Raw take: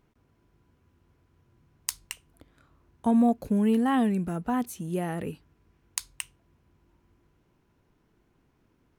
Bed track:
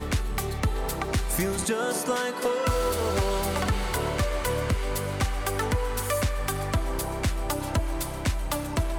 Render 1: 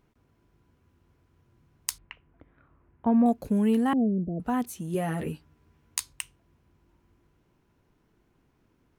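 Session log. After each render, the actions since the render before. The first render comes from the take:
0:01.98–0:03.26: low-pass filter 2,400 Hz 24 dB per octave
0:03.93–0:04.40: Butterworth low-pass 670 Hz 72 dB per octave
0:04.93–0:06.13: double-tracking delay 13 ms −3 dB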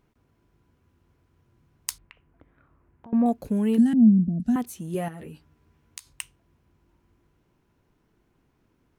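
0:02.02–0:03.13: downward compressor, threshold −45 dBFS
0:03.78–0:04.56: drawn EQ curve 130 Hz 0 dB, 220 Hz +12 dB, 450 Hz −19 dB, 690 Hz −8 dB, 1,100 Hz −29 dB, 1,600 Hz −5 dB, 2,300 Hz −10 dB, 5,500 Hz +7 dB, 9,200 Hz +3 dB, 16,000 Hz −12 dB
0:05.08–0:06.07: downward compressor, threshold −37 dBFS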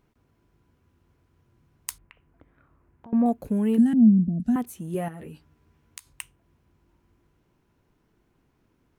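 dynamic equaliser 4,800 Hz, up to −7 dB, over −58 dBFS, Q 0.99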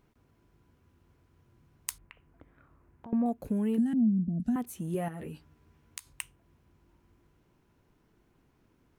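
downward compressor 2 to 1, threshold −31 dBFS, peak gain reduction 10.5 dB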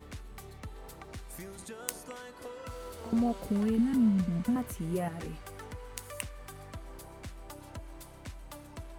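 mix in bed track −18 dB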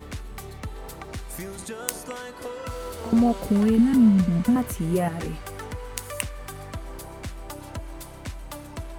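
level +9 dB
brickwall limiter −3 dBFS, peak gain reduction 1.5 dB

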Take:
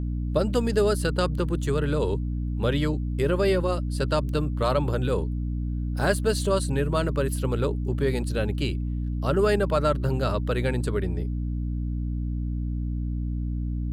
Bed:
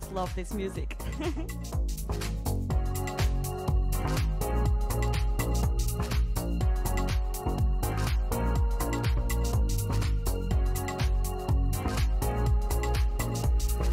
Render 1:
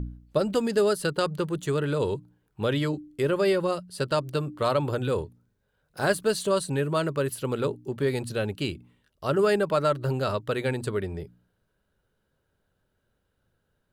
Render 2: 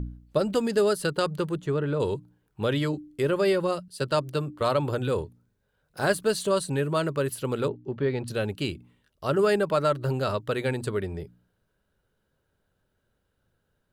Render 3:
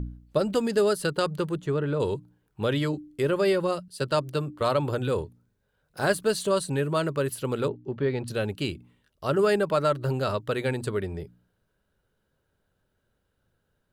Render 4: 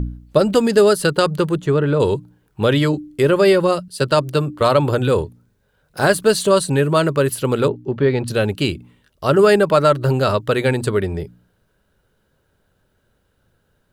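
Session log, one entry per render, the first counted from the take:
hum removal 60 Hz, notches 5
0:01.55–0:02.00: low-pass filter 1,500 Hz 6 dB per octave; 0:03.88–0:04.61: multiband upward and downward expander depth 40%; 0:07.68–0:08.28: high-frequency loss of the air 230 metres
no processing that can be heard
level +10 dB; brickwall limiter −3 dBFS, peak gain reduction 2 dB

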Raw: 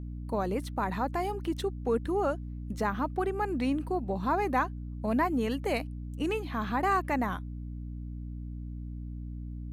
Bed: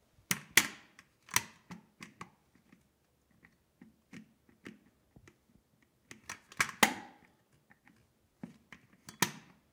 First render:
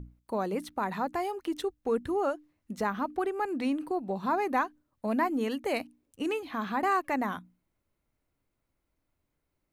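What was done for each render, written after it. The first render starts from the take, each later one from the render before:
mains-hum notches 60/120/180/240/300 Hz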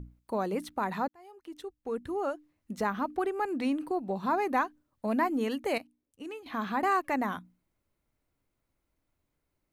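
0:01.08–0:02.73: fade in
0:05.78–0:06.46: clip gain −10 dB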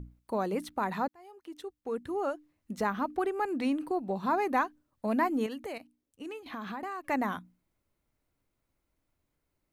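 0:01.37–0:02.14: low-shelf EQ 69 Hz −9.5 dB
0:05.46–0:07.10: downward compressor, threshold −35 dBFS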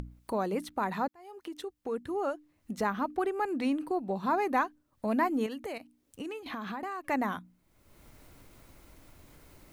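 upward compression, threshold −34 dBFS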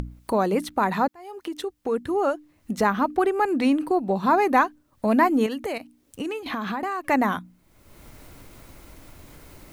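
level +9 dB

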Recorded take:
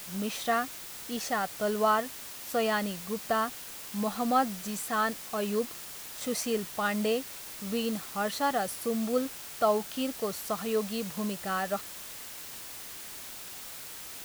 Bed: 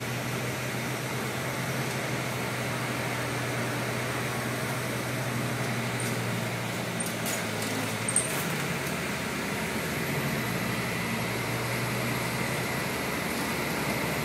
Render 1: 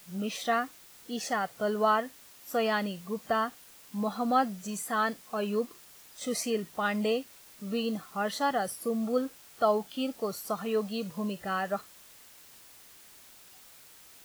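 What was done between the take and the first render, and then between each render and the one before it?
noise reduction from a noise print 11 dB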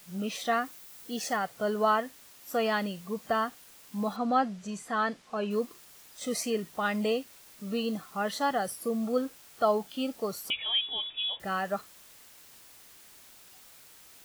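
0:00.65–0:01.37: high-shelf EQ 11,000 Hz +7 dB
0:04.16–0:05.51: high-frequency loss of the air 78 metres
0:10.50–0:11.40: voice inversion scrambler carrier 3,600 Hz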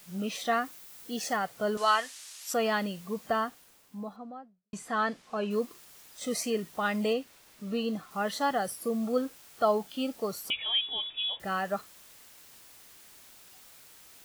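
0:01.77–0:02.54: meter weighting curve ITU-R 468
0:03.17–0:04.73: fade out and dull
0:07.13–0:08.11: high-shelf EQ 5,500 Hz −6.5 dB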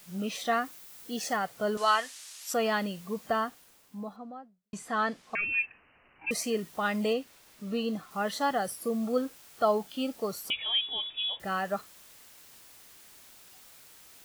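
0:05.35–0:06.31: voice inversion scrambler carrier 2,900 Hz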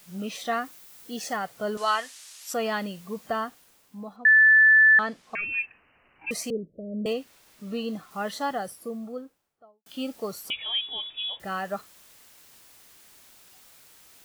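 0:04.25–0:04.99: beep over 1,750 Hz −12.5 dBFS
0:06.50–0:07.06: Butterworth low-pass 600 Hz 96 dB per octave
0:08.25–0:09.86: fade out and dull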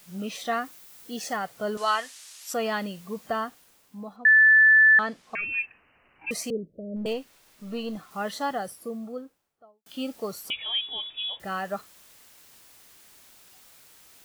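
0:06.96–0:07.97: gain on one half-wave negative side −3 dB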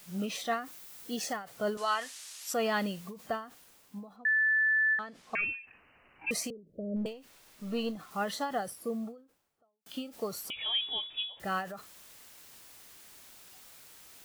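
reversed playback
downward compressor 12 to 1, threshold −25 dBFS, peak gain reduction 10.5 dB
reversed playback
every ending faded ahead of time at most 130 dB per second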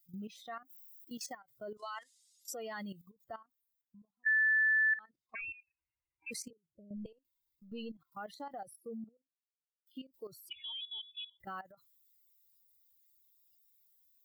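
spectral dynamics exaggerated over time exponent 2
output level in coarse steps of 14 dB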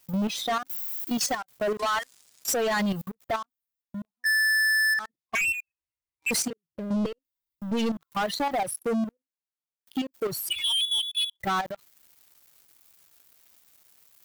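in parallel at −2 dB: downward compressor 4 to 1, threshold −40 dBFS, peak gain reduction 11 dB
on the sum: leveller curve on the samples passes 5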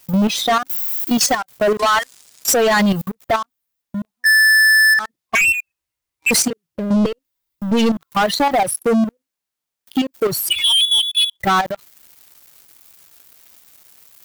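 level +11 dB

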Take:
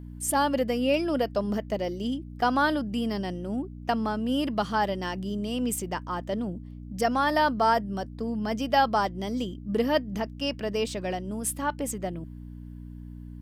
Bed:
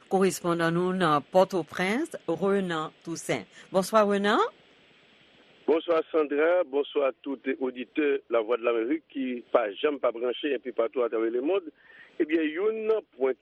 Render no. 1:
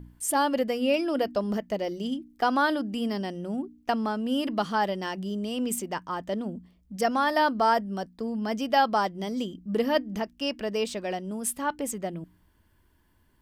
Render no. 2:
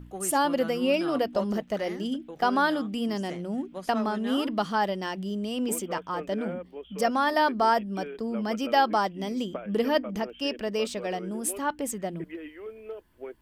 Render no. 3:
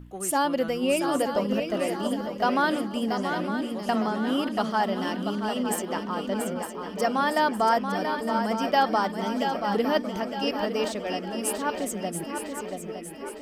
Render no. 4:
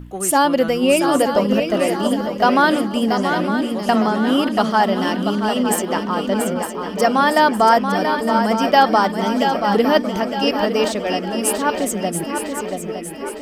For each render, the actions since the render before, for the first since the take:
hum removal 60 Hz, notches 5
mix in bed −14 dB
feedback echo with a long and a short gap by turns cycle 909 ms, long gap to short 3 to 1, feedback 47%, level −7 dB
level +9 dB

